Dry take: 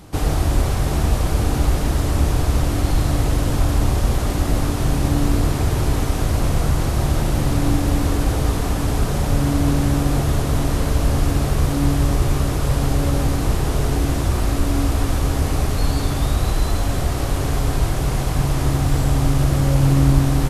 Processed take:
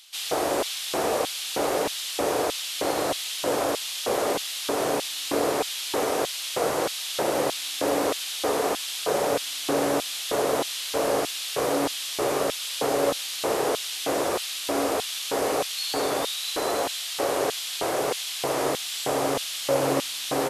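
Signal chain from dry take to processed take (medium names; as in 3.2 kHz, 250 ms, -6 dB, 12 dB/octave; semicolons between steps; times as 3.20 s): LFO high-pass square 1.6 Hz 480–3300 Hz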